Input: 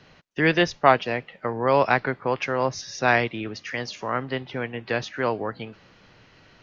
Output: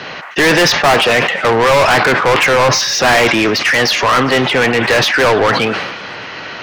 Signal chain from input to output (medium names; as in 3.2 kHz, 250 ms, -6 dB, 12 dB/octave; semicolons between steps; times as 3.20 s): treble shelf 5.7 kHz -7.5 dB; overdrive pedal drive 38 dB, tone 5.2 kHz, clips at -2 dBFS; repeats whose band climbs or falls 102 ms, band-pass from 1 kHz, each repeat 0.7 oct, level -12 dB; decay stretcher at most 42 dB/s; trim -1 dB